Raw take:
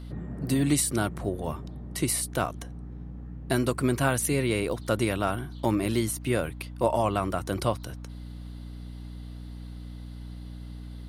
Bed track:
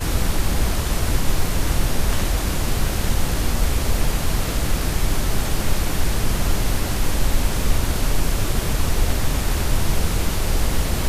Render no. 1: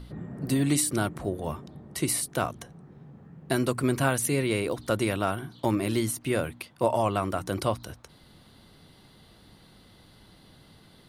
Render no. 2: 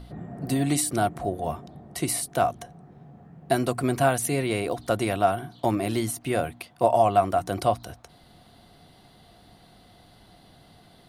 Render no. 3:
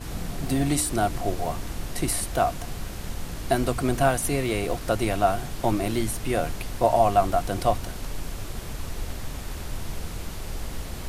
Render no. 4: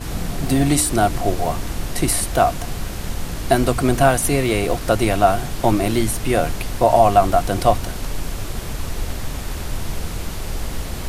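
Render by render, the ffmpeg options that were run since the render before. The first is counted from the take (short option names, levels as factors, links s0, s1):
-af "bandreject=f=60:t=h:w=4,bandreject=f=120:t=h:w=4,bandreject=f=180:t=h:w=4,bandreject=f=240:t=h:w=4,bandreject=f=300:t=h:w=4"
-af "equalizer=f=710:t=o:w=0.2:g=14.5"
-filter_complex "[1:a]volume=0.224[s0];[0:a][s0]amix=inputs=2:normalize=0"
-af "volume=2.24,alimiter=limit=0.794:level=0:latency=1"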